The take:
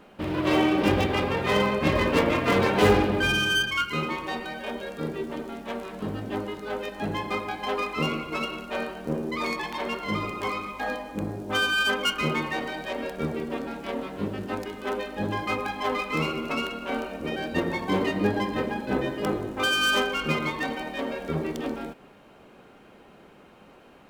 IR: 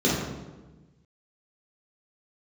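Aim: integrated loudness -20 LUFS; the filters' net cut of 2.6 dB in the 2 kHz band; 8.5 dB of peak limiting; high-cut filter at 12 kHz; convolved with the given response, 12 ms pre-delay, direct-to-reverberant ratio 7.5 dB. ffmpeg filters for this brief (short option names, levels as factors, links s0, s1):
-filter_complex "[0:a]lowpass=12000,equalizer=f=2000:t=o:g=-3.5,alimiter=limit=0.119:level=0:latency=1,asplit=2[s0][s1];[1:a]atrim=start_sample=2205,adelay=12[s2];[s1][s2]afir=irnorm=-1:irlink=0,volume=0.0668[s3];[s0][s3]amix=inputs=2:normalize=0,volume=2.24"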